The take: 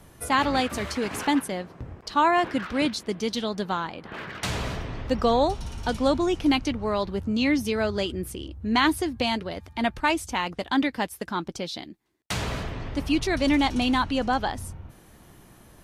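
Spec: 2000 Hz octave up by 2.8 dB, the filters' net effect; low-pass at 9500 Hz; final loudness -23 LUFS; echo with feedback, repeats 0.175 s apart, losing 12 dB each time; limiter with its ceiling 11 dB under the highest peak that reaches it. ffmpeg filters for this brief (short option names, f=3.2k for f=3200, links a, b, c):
-af "lowpass=9.5k,equalizer=f=2k:t=o:g=3.5,alimiter=limit=-17.5dB:level=0:latency=1,aecho=1:1:175|350|525:0.251|0.0628|0.0157,volume=5.5dB"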